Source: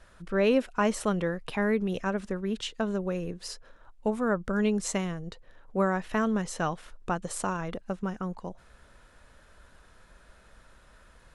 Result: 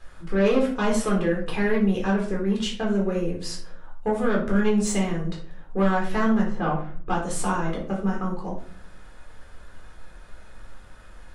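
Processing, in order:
0:06.41–0:07.09: low-pass filter 1,500 Hz 12 dB per octave
soft clipping −22 dBFS, distortion −14 dB
rectangular room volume 420 cubic metres, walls furnished, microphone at 3.9 metres

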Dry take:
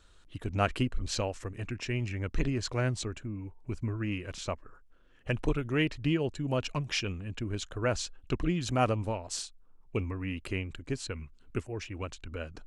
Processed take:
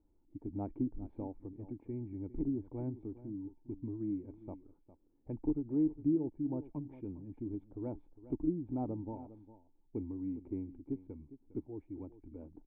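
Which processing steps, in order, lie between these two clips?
formant resonators in series u
single-tap delay 406 ms −15.5 dB
treble cut that deepens with the level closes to 1,200 Hz, closed at −32.5 dBFS
level +2 dB

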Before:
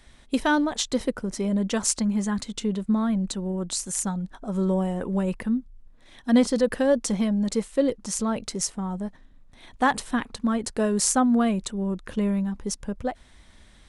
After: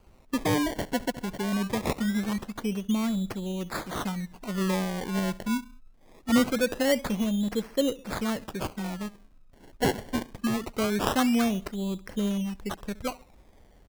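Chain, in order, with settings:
repeating echo 68 ms, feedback 44%, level −20 dB
sample-and-hold swept by an LFO 24×, swing 100% 0.23 Hz
level −3.5 dB

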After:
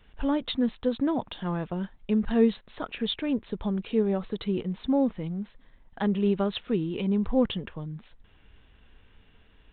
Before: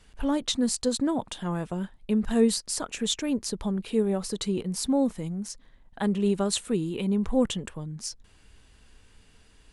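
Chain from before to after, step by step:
G.726 40 kbit/s 8,000 Hz

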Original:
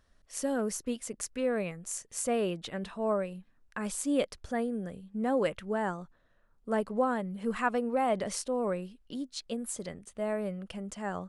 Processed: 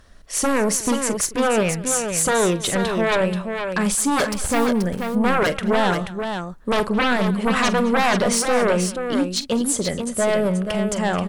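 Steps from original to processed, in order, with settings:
0:04.25–0:04.67: hold until the input has moved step −43.5 dBFS
sine wavefolder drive 13 dB, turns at −15.5 dBFS
multi-tap delay 44/214/482 ms −14/−19/−6.5 dB

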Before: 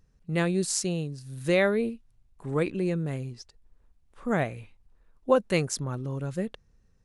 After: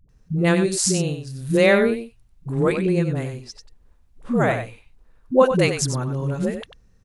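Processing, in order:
all-pass dispersion highs, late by 92 ms, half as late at 300 Hz
on a send: single-tap delay 94 ms −8.5 dB
on the sum: level +7 dB

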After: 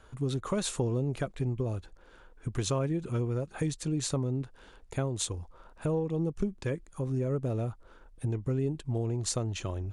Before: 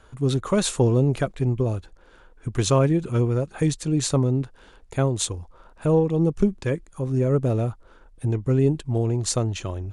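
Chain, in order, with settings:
downward compressor 2.5 to 1, threshold −26 dBFS, peak gain reduction 8.5 dB
level −3.5 dB

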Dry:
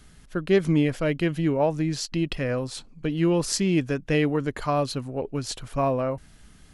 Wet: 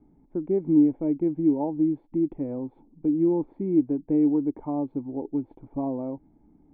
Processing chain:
low-shelf EQ 220 Hz −9.5 dB
in parallel at −2.5 dB: downward compressor, threshold −32 dBFS, peak gain reduction 13.5 dB
on the sum: formant resonators in series u
level +7 dB

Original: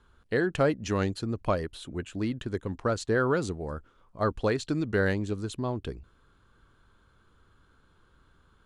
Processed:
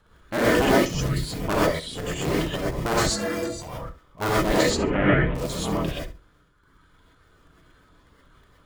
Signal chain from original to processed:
sub-harmonics by changed cycles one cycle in 3, inverted
0:04.67–0:05.35: Butterworth low-pass 3,100 Hz 48 dB per octave
reverb reduction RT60 1.5 s
0:00.77–0:01.31: parametric band 1,300 Hz → 410 Hz −12 dB 2.7 octaves
transient designer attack −2 dB, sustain +8 dB
0:03.04–0:03.62: stiff-string resonator 100 Hz, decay 0.25 s, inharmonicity 0.03
on a send: flutter between parallel walls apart 11.6 metres, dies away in 0.28 s
on the sum: reverb whose tail is shaped and stops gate 150 ms rising, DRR −7 dB

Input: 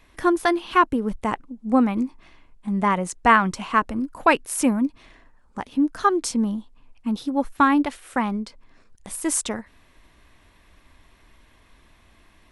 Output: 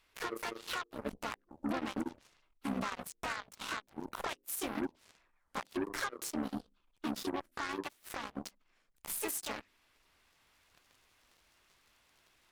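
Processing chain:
low-shelf EQ 430 Hz −11.5 dB
mains-hum notches 50/100/150/200/250/300/350/400 Hz
downward compressor 16 to 1, threshold −37 dBFS, peak gain reduction 25.5 dB
pitch-shifted copies added +4 semitones −6 dB, +5 semitones −1 dB
brickwall limiter −29.5 dBFS, peak gain reduction 11 dB
speech leveller within 5 dB 2 s
harmonic generator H 5 −38 dB, 7 −15 dB, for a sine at −27.5 dBFS
level +1.5 dB

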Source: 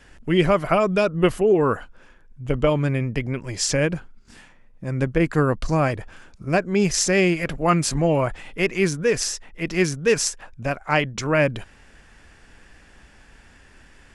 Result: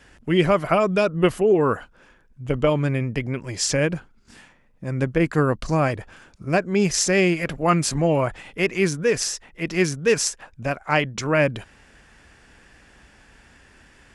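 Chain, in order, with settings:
high-pass filter 50 Hz 6 dB per octave

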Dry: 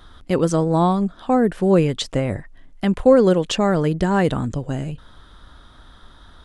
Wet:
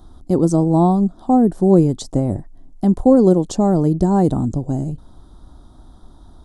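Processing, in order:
drawn EQ curve 150 Hz 0 dB, 340 Hz +3 dB, 490 Hz −7 dB, 760 Hz 0 dB, 1,700 Hz −21 dB, 2,700 Hz −25 dB, 4,100 Hz −10 dB, 7,200 Hz −3 dB
level +3.5 dB

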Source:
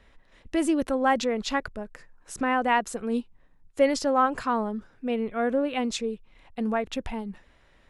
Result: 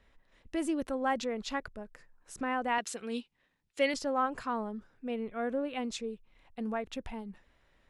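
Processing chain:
0:02.78–0:03.94: meter weighting curve D
level −8 dB

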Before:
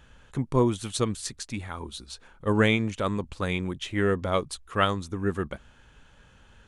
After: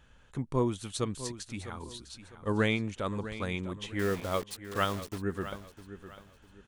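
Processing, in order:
0:03.99–0:05.18: bit-depth reduction 6 bits, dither none
on a send: repeating echo 653 ms, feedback 31%, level −13 dB
on the sum: level −6 dB

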